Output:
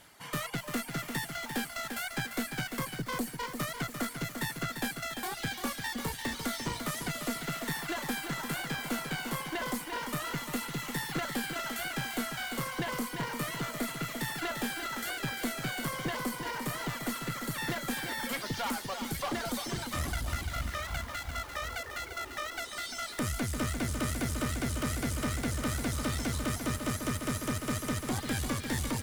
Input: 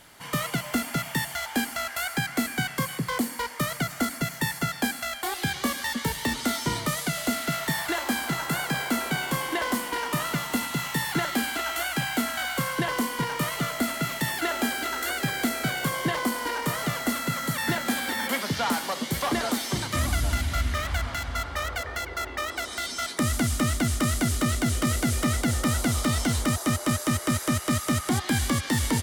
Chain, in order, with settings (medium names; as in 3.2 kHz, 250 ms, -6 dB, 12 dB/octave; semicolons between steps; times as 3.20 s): reverb removal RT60 1.7 s; one-sided clip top -31 dBFS; bit-crushed delay 345 ms, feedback 55%, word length 7-bit, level -6 dB; trim -4.5 dB